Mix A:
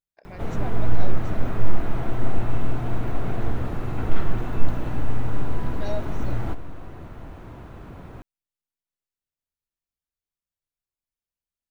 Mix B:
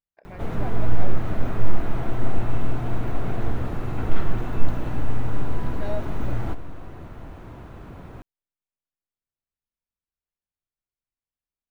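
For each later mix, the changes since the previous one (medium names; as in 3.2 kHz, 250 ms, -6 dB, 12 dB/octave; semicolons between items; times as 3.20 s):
speech: add low-pass 2.8 kHz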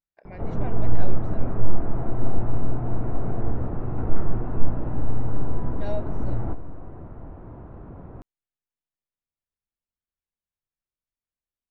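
background: add low-pass 1 kHz 12 dB/octave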